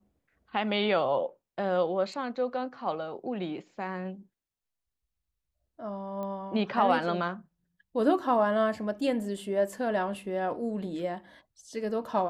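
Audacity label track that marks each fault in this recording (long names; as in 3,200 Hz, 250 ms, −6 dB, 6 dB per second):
6.230000	6.230000	click −26 dBFS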